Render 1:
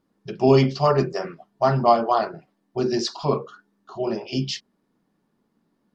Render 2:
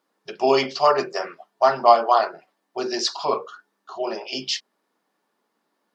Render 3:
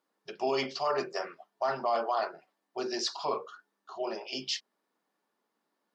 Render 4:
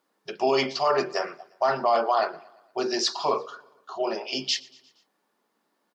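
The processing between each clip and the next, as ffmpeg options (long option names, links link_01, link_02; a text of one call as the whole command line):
ffmpeg -i in.wav -af "highpass=580,volume=4.5dB" out.wav
ffmpeg -i in.wav -af "alimiter=limit=-13dB:level=0:latency=1:release=15,volume=-7.5dB" out.wav
ffmpeg -i in.wav -af "aecho=1:1:117|234|351|468:0.0668|0.0374|0.021|0.0117,volume=7dB" out.wav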